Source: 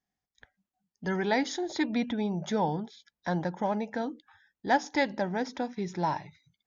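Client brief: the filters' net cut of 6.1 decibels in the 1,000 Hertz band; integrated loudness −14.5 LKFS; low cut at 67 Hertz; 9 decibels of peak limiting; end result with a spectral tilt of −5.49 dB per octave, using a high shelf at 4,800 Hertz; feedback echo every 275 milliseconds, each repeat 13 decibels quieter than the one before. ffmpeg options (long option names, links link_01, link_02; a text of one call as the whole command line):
ffmpeg -i in.wav -af "highpass=67,equalizer=frequency=1000:width_type=o:gain=-8,highshelf=frequency=4800:gain=-7,alimiter=level_in=2dB:limit=-24dB:level=0:latency=1,volume=-2dB,aecho=1:1:275|550|825:0.224|0.0493|0.0108,volume=21.5dB" out.wav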